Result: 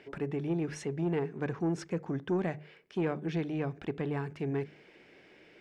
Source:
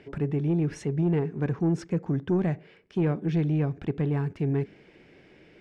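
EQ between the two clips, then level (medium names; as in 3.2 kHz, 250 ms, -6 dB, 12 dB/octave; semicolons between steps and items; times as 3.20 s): bass shelf 260 Hz -12 dB; hum notches 50/100/150 Hz; 0.0 dB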